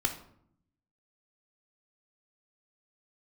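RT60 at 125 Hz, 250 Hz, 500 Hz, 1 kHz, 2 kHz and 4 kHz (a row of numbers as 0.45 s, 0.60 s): 1.1 s, 1.0 s, 0.70 s, 0.65 s, 0.50 s, 0.40 s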